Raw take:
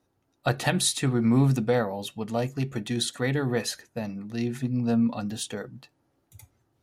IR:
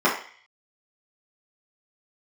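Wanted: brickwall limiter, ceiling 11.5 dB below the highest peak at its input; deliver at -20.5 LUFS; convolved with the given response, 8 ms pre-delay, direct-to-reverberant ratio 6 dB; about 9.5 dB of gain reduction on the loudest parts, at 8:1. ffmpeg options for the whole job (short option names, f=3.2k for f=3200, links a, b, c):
-filter_complex "[0:a]acompressor=threshold=-27dB:ratio=8,alimiter=level_in=1dB:limit=-24dB:level=0:latency=1,volume=-1dB,asplit=2[a][b];[1:a]atrim=start_sample=2205,adelay=8[c];[b][c]afir=irnorm=-1:irlink=0,volume=-25dB[d];[a][d]amix=inputs=2:normalize=0,volume=13dB"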